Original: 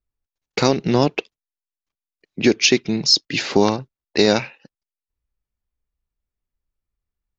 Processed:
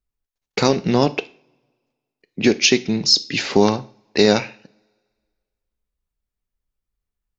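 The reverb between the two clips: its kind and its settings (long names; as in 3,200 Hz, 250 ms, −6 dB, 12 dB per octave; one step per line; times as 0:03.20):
coupled-rooms reverb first 0.4 s, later 1.8 s, from −28 dB, DRR 12 dB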